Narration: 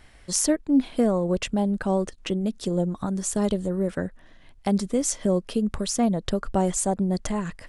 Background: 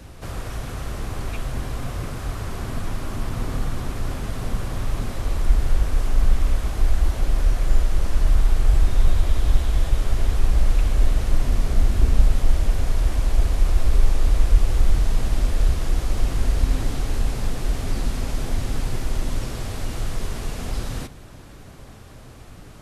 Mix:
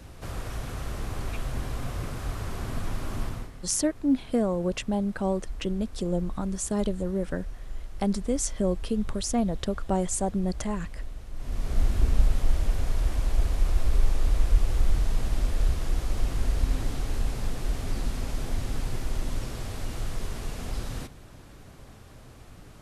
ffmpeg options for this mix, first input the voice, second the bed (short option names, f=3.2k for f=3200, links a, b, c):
-filter_complex "[0:a]adelay=3350,volume=-3.5dB[a];[1:a]volume=10dB,afade=t=out:st=3.23:d=0.28:silence=0.16788,afade=t=in:st=11.34:d=0.48:silence=0.199526[b];[a][b]amix=inputs=2:normalize=0"